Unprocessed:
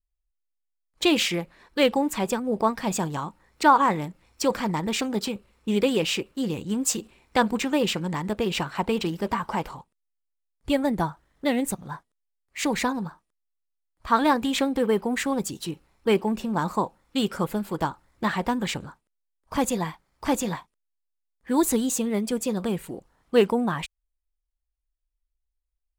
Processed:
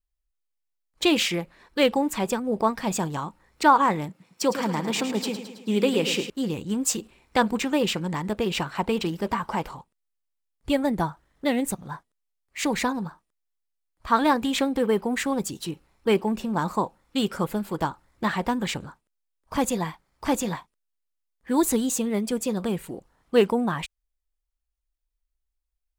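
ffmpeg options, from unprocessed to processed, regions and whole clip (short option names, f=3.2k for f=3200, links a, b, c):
-filter_complex "[0:a]asettb=1/sr,asplit=3[a][b][c];[a]atrim=end=4.094[d];[b]atrim=start=4.09:end=6.3,asetpts=PTS-STARTPTS,afade=t=in:d=0.004:c=qsin,afade=t=out:st=2.206:d=0.004:c=qsin,highpass=f=130:w=0.5412,highpass=f=130:w=1.3066,aecho=1:1:108|216|324|432|540|648|756:0.316|0.18|0.103|0.0586|0.0334|0.019|0.0108,atrim=end_sample=97461[e];[c]atrim=start=6.296[f];[d][e]acrossfade=d=0.004:c1=hsin:c2=qsin[g];[g][f]acrossfade=d=0.004:c1=qsin:c2=hsin"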